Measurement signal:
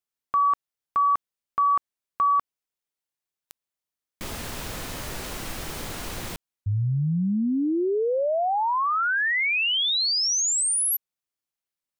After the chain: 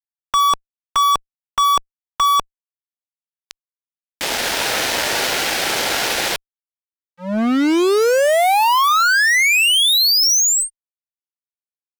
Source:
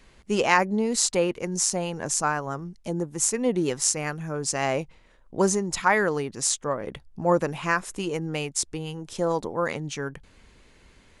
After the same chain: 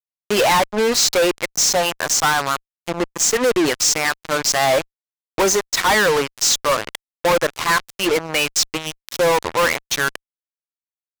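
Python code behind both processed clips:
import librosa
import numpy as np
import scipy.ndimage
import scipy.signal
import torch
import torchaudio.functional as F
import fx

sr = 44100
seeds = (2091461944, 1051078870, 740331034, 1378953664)

p1 = scipy.signal.sosfilt(scipy.signal.butter(2, 520.0, 'highpass', fs=sr, output='sos'), x)
p2 = fx.noise_reduce_blind(p1, sr, reduce_db=7)
p3 = scipy.signal.sosfilt(scipy.signal.butter(4, 5900.0, 'lowpass', fs=sr, output='sos'), p2)
p4 = fx.rider(p3, sr, range_db=4, speed_s=0.5)
p5 = p3 + (p4 * librosa.db_to_amplitude(-1.0))
y = fx.fuzz(p5, sr, gain_db=38.0, gate_db=-32.0)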